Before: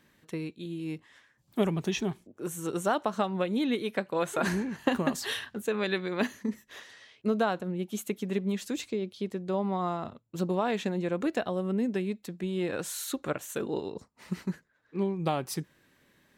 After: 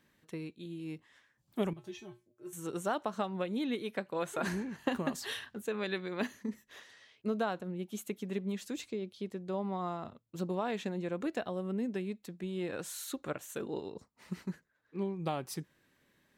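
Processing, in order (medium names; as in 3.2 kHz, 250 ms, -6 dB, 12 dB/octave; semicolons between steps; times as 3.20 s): 1.73–2.53 s: feedback comb 120 Hz, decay 0.2 s, harmonics odd, mix 90%; trim -6 dB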